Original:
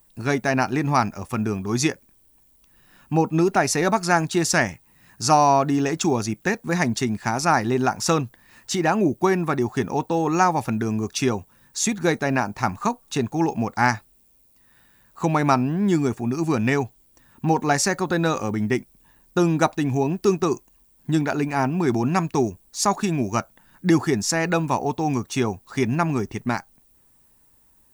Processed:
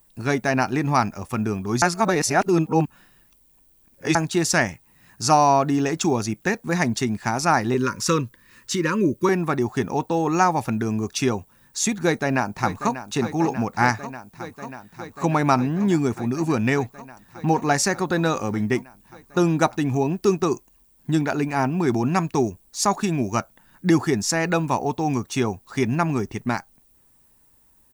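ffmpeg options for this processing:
ffmpeg -i in.wav -filter_complex "[0:a]asettb=1/sr,asplit=3[link_01][link_02][link_03];[link_01]atrim=end=7.744[link_04];[link_02]atrim=start=7.74:end=9.29,asetpts=PTS-STARTPTS,afade=type=in:duration=0.004:curve=qsin,afade=type=out:start_time=1.546:duration=0.004:curve=qsin,asuperstop=centerf=740:order=20:qfactor=2.2[link_05];[link_03]atrim=start=9.286[link_06];[link_04][link_05]acrossfade=duration=0.004:curve1=hsin:curve2=qsin[link_07];[link_07][link_06]acrossfade=duration=0.004:curve1=qsin:curve2=hsin,asplit=2[link_08][link_09];[link_09]afade=type=in:start_time=11.97:duration=0.01,afade=type=out:start_time=13.05:duration=0.01,aecho=0:1:590|1180|1770|2360|2950|3540|4130|4720|5310|5900|6490|7080:0.251189|0.21351|0.181484|0.154261|0.131122|0.111454|0.0947357|0.0805253|0.0684465|0.0581795|0.0494526|0.0420347[link_10];[link_08][link_10]amix=inputs=2:normalize=0,asplit=3[link_11][link_12][link_13];[link_11]atrim=end=1.822[link_14];[link_12]atrim=start=1.818:end=4.152,asetpts=PTS-STARTPTS,areverse[link_15];[link_13]atrim=start=4.148[link_16];[link_14][link_15]acrossfade=duration=0.004:curve1=hsin:curve2=hsin[link_17];[link_17][link_16]acrossfade=duration=0.004:curve1=hsin:curve2=hsin" out.wav

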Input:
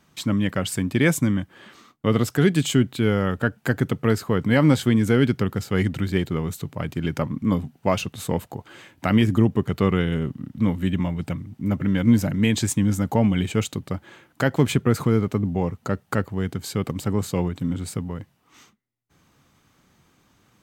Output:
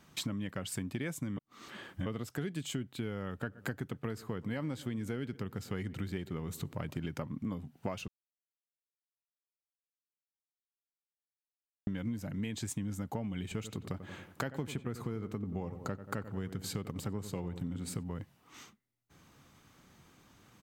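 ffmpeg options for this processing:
ffmpeg -i in.wav -filter_complex "[0:a]asplit=3[link_01][link_02][link_03];[link_01]afade=type=out:start_time=3.46:duration=0.02[link_04];[link_02]asplit=2[link_05][link_06];[link_06]adelay=122,lowpass=frequency=2000:poles=1,volume=-21.5dB,asplit=2[link_07][link_08];[link_08]adelay=122,lowpass=frequency=2000:poles=1,volume=0.54,asplit=2[link_09][link_10];[link_10]adelay=122,lowpass=frequency=2000:poles=1,volume=0.54,asplit=2[link_11][link_12];[link_12]adelay=122,lowpass=frequency=2000:poles=1,volume=0.54[link_13];[link_05][link_07][link_09][link_11][link_13]amix=inputs=5:normalize=0,afade=type=in:start_time=3.46:duration=0.02,afade=type=out:start_time=7.06:duration=0.02[link_14];[link_03]afade=type=in:start_time=7.06:duration=0.02[link_15];[link_04][link_14][link_15]amix=inputs=3:normalize=0,asettb=1/sr,asplit=3[link_16][link_17][link_18];[link_16]atrim=end=13.424[link_19];[link_17]atrim=start=13.42:end=18.04,asetpts=PTS-STARTPTS,afade=type=in:duration=0.004:curve=qsin,afade=type=out:start_time=4.616:duration=0.004:curve=qsin,asplit=2[link_20][link_21];[link_21]adelay=91,lowpass=frequency=1800:poles=1,volume=-12.5dB,asplit=2[link_22][link_23];[link_23]adelay=91,lowpass=frequency=1800:poles=1,volume=0.5,asplit=2[link_24][link_25];[link_25]adelay=91,lowpass=frequency=1800:poles=1,volume=0.5,asplit=2[link_26][link_27];[link_27]adelay=91,lowpass=frequency=1800:poles=1,volume=0.5,asplit=2[link_28][link_29];[link_29]adelay=91,lowpass=frequency=1800:poles=1,volume=0.5[link_30];[link_20][link_22][link_24][link_26][link_28][link_30]amix=inputs=6:normalize=0,atrim=end_sample=203742[link_31];[link_18]atrim=start=18.036[link_32];[link_19][link_31]acrossfade=duration=0.004:curve1=hsin:curve2=qsin[link_33];[link_33][link_32]acrossfade=duration=0.004:curve1=qsin:curve2=hsin,asplit=5[link_34][link_35][link_36][link_37][link_38];[link_34]atrim=end=1.372[link_39];[link_35]atrim=start=1.368:end=2.062,asetpts=PTS-STARTPTS,areverse[link_40];[link_36]atrim=start=2.058:end=8.08,asetpts=PTS-STARTPTS,afade=type=out:start_time=6.018:duration=0.004:curve=hsin[link_41];[link_37]atrim=start=8.08:end=11.87,asetpts=PTS-STARTPTS,volume=0[link_42];[link_38]atrim=start=11.87,asetpts=PTS-STARTPTS,afade=type=in:duration=0.004:curve=hsin[link_43];[link_39][link_40]acrossfade=duration=0.004:curve1=hsin:curve2=hsin[link_44];[link_41][link_42][link_43]concat=n=3:v=0:a=1[link_45];[link_44][link_45]acrossfade=duration=0.004:curve1=hsin:curve2=hsin,acompressor=threshold=-33dB:ratio=10,volume=-1dB" out.wav

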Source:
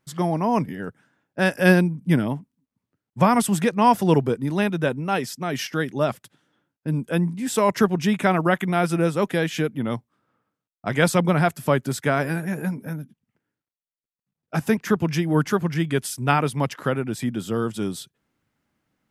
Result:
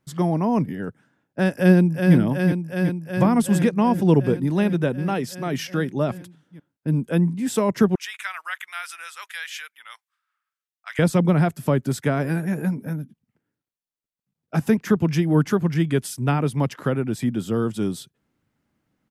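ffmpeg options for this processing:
ffmpeg -i in.wav -filter_complex "[0:a]asplit=2[link_01][link_02];[link_02]afade=type=in:start_time=1.53:duration=0.01,afade=type=out:start_time=2.15:duration=0.01,aecho=0:1:370|740|1110|1480|1850|2220|2590|2960|3330|3700|4070|4440:0.446684|0.357347|0.285877|0.228702|0.182962|0.146369|0.117095|0.0936763|0.0749411|0.0599529|0.0479623|0.0383698[link_03];[link_01][link_03]amix=inputs=2:normalize=0,asettb=1/sr,asplit=3[link_04][link_05][link_06];[link_04]atrim=end=7.954[link_07];[link_05]atrim=start=7.95:end=10.99,asetpts=PTS-STARTPTS,afade=type=in:duration=0.004:curve=qsin,afade=type=out:start_time=3.036:duration=0.004:curve=qsin,highpass=frequency=1400:width=0.5412,highpass=frequency=1400:width=1.3066[link_08];[link_06]atrim=start=10.986[link_09];[link_07][link_08]acrossfade=duration=0.004:curve1=hsin:curve2=qsin[link_10];[link_10][link_09]acrossfade=duration=0.004:curve1=qsin:curve2=hsin,lowshelf=frequency=400:gain=8,acrossover=split=490[link_11][link_12];[link_12]acompressor=threshold=-24dB:ratio=2.5[link_13];[link_11][link_13]amix=inputs=2:normalize=0,lowshelf=frequency=150:gain=-4,volume=-2dB" out.wav

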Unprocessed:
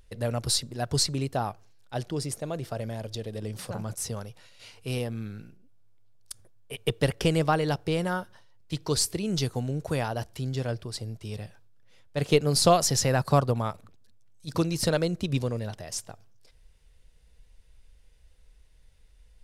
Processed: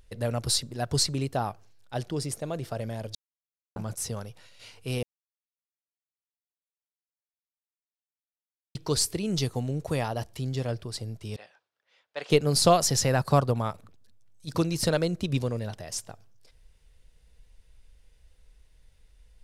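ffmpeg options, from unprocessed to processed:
ffmpeg -i in.wav -filter_complex "[0:a]asettb=1/sr,asplit=3[link_01][link_02][link_03];[link_01]atrim=end=9.324[link_04];[link_02]atrim=start=9.32:end=10.72,asetpts=PTS-STARTPTS,afade=type=in:duration=0.004:curve=qsin,afade=type=out:start_time=1.396:duration=0.004:curve=qsin,bandreject=frequency=1500:width=10[link_05];[link_03]atrim=start=10.716[link_06];[link_04][link_05]acrossfade=duration=0.004:curve1=hsin:curve2=qsin[link_07];[link_07][link_06]acrossfade=duration=0.004:curve1=qsin:curve2=hsin,asettb=1/sr,asplit=3[link_08][link_09][link_10];[link_08]atrim=end=11.364[link_11];[link_09]atrim=start=11.36:end=12.3,asetpts=PTS-STARTPTS,afade=type=in:duration=0.004:curve=qsin,afade=type=out:start_time=0.936:duration=0.004:curve=qsin,highpass=660,lowpass=4400[link_12];[link_10]atrim=start=12.296[link_13];[link_11][link_12]acrossfade=duration=0.004:curve1=hsin:curve2=qsin[link_14];[link_14][link_13]acrossfade=duration=0.004:curve1=qsin:curve2=hsin,asplit=5[link_15][link_16][link_17][link_18][link_19];[link_15]atrim=end=3.15,asetpts=PTS-STARTPTS,afade=type=out:start_time=3.146:duration=0.004:curve=hsin[link_20];[link_16]atrim=start=3.15:end=3.76,asetpts=PTS-STARTPTS,volume=0[link_21];[link_17]atrim=start=3.76:end=5.03,asetpts=PTS-STARTPTS,afade=type=in:duration=0.004:curve=hsin,afade=type=out:start_time=1.266:duration=0.004:curve=hsin[link_22];[link_18]atrim=start=5.03:end=8.75,asetpts=PTS-STARTPTS,volume=0[link_23];[link_19]atrim=start=8.75,asetpts=PTS-STARTPTS,afade=type=in:duration=0.004:curve=hsin[link_24];[link_20][link_21][link_22][link_23][link_24]concat=n=5:v=0:a=1" out.wav

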